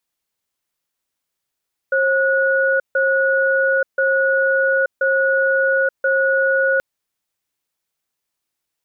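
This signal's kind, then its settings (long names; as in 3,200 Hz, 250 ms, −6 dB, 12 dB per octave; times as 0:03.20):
tone pair in a cadence 537 Hz, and 1,460 Hz, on 0.88 s, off 0.15 s, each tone −16.5 dBFS 4.88 s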